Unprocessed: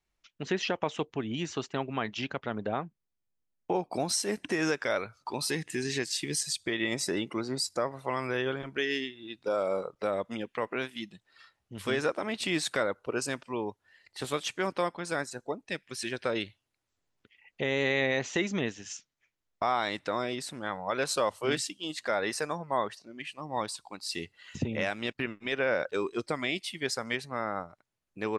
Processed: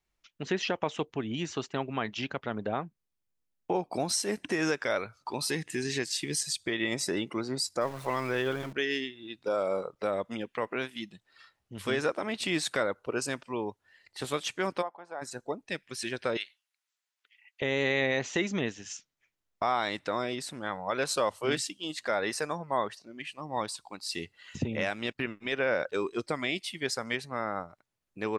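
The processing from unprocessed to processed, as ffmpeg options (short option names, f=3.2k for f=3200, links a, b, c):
-filter_complex "[0:a]asettb=1/sr,asplit=3[a][b][c];[a]atrim=end=7.814[d];[b]atrim=start=7.81:end=8.73,asetpts=PTS-STARTPTS,afade=t=in:d=0.004:c=qsin,afade=t=out:st=0.916:d=0.004:c=qsin,aeval=exprs='val(0)+0.5*0.00841*sgn(val(0))':c=same[e];[c]atrim=start=8.726[f];[d][e]acrossfade=d=0.004:c1=hsin:c2=qsin[g];[g][f]acrossfade=d=0.004:c1=qsin:c2=hsin,asplit=3[h][i][j];[h]afade=t=out:st=14.81:d=0.02[k];[i]bandpass=f=790:t=q:w=2.8,afade=t=in:st=14.81:d=0.02,afade=t=out:st=15.21:d=0.02[l];[j]afade=t=in:st=15.21:d=0.02[m];[k][l][m]amix=inputs=3:normalize=0,asettb=1/sr,asplit=3[n][o][p];[n]atrim=end=16.374[q];[o]atrim=start=16.37:end=17.62,asetpts=PTS-STARTPTS,afade=t=in:d=0.004:c=qsin,afade=t=out:st=1.246:d=0.004:c=qsin,highpass=1.4k[r];[p]atrim=start=17.616[s];[q][r]acrossfade=d=0.004:c1=hsin:c2=qsin[t];[t][s]acrossfade=d=0.004:c1=qsin:c2=hsin"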